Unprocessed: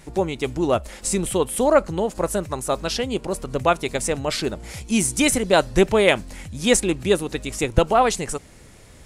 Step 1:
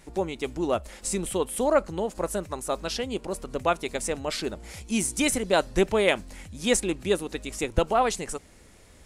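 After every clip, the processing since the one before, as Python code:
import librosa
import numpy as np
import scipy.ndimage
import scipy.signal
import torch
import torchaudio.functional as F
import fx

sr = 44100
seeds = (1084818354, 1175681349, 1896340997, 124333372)

y = fx.peak_eq(x, sr, hz=130.0, db=-8.5, octaves=0.45)
y = F.gain(torch.from_numpy(y), -5.5).numpy()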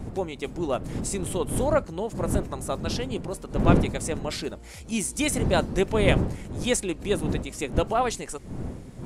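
y = fx.dmg_wind(x, sr, seeds[0], corner_hz=230.0, level_db=-28.0)
y = F.gain(torch.from_numpy(y), -1.5).numpy()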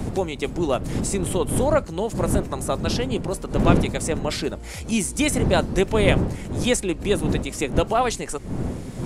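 y = fx.band_squash(x, sr, depth_pct=40)
y = F.gain(torch.from_numpy(y), 4.0).numpy()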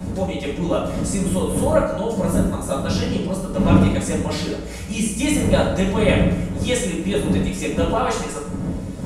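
y = fx.rev_fdn(x, sr, rt60_s=0.94, lf_ratio=1.1, hf_ratio=0.75, size_ms=32.0, drr_db=-7.5)
y = F.gain(torch.from_numpy(y), -7.5).numpy()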